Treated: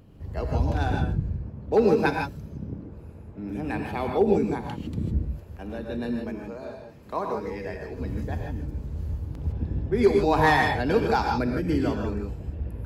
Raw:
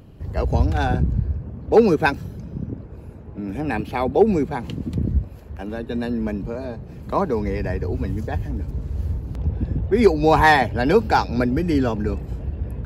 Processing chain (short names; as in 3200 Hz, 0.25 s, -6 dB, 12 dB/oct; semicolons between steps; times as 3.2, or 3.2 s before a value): 6.2–7.97 low shelf 230 Hz -12 dB; non-linear reverb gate 0.18 s rising, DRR 2 dB; gain -7 dB